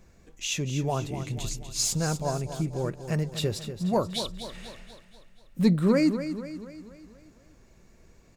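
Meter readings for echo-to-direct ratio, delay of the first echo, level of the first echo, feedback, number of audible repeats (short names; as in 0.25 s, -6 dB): -9.0 dB, 0.242 s, -10.5 dB, 51%, 5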